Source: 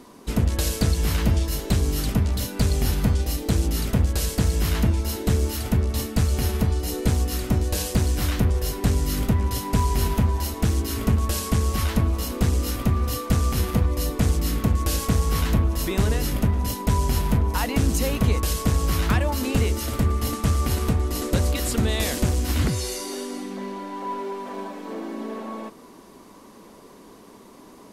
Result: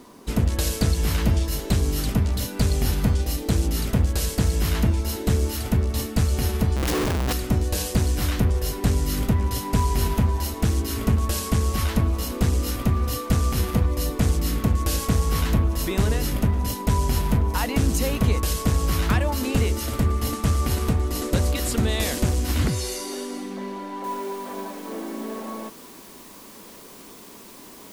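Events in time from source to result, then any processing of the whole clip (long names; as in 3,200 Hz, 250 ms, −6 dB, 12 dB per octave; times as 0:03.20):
0:06.76–0:07.33: comparator with hysteresis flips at −32 dBFS
0:24.04: noise floor change −67 dB −47 dB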